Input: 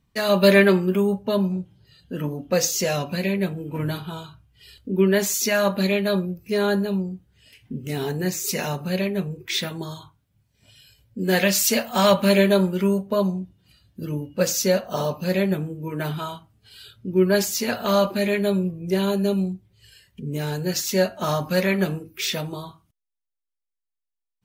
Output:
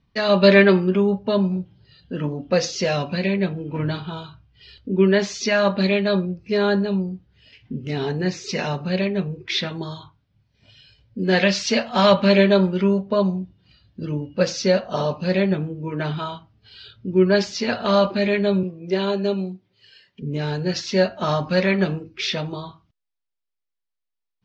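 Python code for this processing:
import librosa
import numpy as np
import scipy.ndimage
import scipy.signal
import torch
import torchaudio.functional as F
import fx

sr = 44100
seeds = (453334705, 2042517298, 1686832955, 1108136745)

y = fx.highpass(x, sr, hz=240.0, slope=12, at=(18.63, 20.22))
y = scipy.signal.sosfilt(scipy.signal.butter(6, 5300.0, 'lowpass', fs=sr, output='sos'), y)
y = y * librosa.db_to_amplitude(2.0)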